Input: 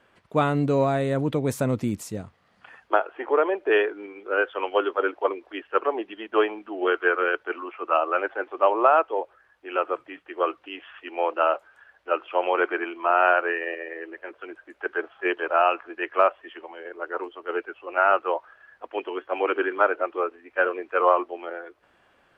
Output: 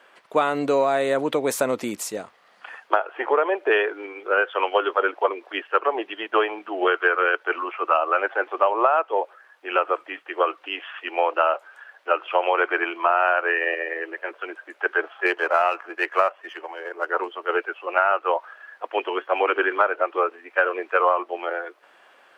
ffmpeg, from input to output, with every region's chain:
-filter_complex "[0:a]asettb=1/sr,asplit=3[a][b][c];[a]atrim=end=15.264[d];[b]atrim=start=15.26:end=17.09,asetpts=PTS-STARTPTS,afade=t=in:d=0.004:c=qsin,afade=t=out:st=1.826:d=0.004:c=qsin,aeval=exprs='if(lt(val(0),0),0.708*val(0),val(0))':c=same,equalizer=f=3.7k:t=o:w=0.46:g=-6.5[e];[c]atrim=start=17.086[f];[d][e]acrossfade=d=0.004:c1=hsin:c2=qsin[g];[g][f]acrossfade=d=0.004:c1=qsin:c2=hsin,highpass=480,acompressor=threshold=-25dB:ratio=4,volume=8.5dB"

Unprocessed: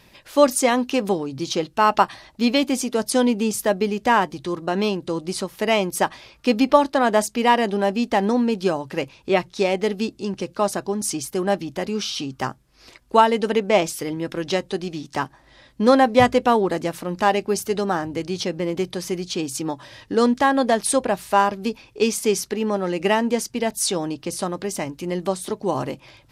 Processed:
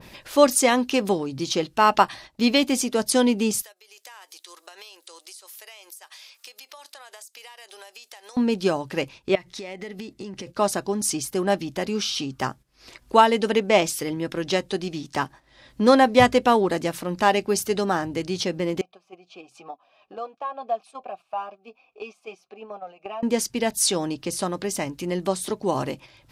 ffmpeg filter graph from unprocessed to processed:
-filter_complex "[0:a]asettb=1/sr,asplit=3[a][b][c];[a]atrim=end=3.624[d];[b]atrim=start=3.62:end=8.37,asetpts=PTS-STARTPTS,afade=t=in:d=0.004:c=qsin,afade=t=out:st=4.746:d=0.004:c=qsin,aderivative,acompressor=threshold=-42dB:ratio=12:attack=3.2:release=140:knee=1:detection=peak,highpass=f=410:w=0.5412,highpass=f=410:w=1.3066[e];[c]atrim=start=8.366[f];[d][e]acrossfade=d=0.004:c1=hsin:c2=qsin[g];[g][f]acrossfade=d=0.004:c1=qsin:c2=hsin,asettb=1/sr,asplit=3[h][i][j];[h]atrim=end=9.354[k];[i]atrim=start=9.35:end=10.47,asetpts=PTS-STARTPTS,afade=t=in:d=0.004:c=qsin,afade=t=out:st=1.116:d=0.004:c=qsin,equalizer=f=2k:w=6.6:g=10.5,acompressor=threshold=-33dB:ratio=8:attack=3.2:release=140:knee=1:detection=peak[l];[j]atrim=start=10.466[m];[k][l]acrossfade=d=0.004:c1=hsin:c2=qsin[n];[n][m]acrossfade=d=0.004:c1=qsin:c2=hsin,asettb=1/sr,asplit=3[o][p][q];[o]atrim=end=18.814[r];[p]atrim=start=18.81:end=23.23,asetpts=PTS-STARTPTS,afade=t=in:d=0.004:c=qsin,afade=t=out:st=4.416:d=0.004:c=qsin,flanger=delay=3.9:depth=2.4:regen=-16:speed=1:shape=triangular,asplit=3[s][t][u];[s]bandpass=f=730:t=q:w=8,volume=0dB[v];[t]bandpass=f=1.09k:t=q:w=8,volume=-6dB[w];[u]bandpass=f=2.44k:t=q:w=8,volume=-9dB[x];[v][w][x]amix=inputs=3:normalize=0[y];[q]atrim=start=23.226[z];[r][y]acrossfade=d=0.004:c1=hsin:c2=qsin[aa];[aa][z]acrossfade=d=0.004:c1=qsin:c2=hsin,agate=range=-10dB:threshold=-41dB:ratio=16:detection=peak,acompressor=mode=upward:threshold=-29dB:ratio=2.5,adynamicequalizer=threshold=0.0316:dfrequency=1700:dqfactor=0.7:tfrequency=1700:tqfactor=0.7:attack=5:release=100:ratio=0.375:range=1.5:mode=boostabove:tftype=highshelf,volume=-1dB"

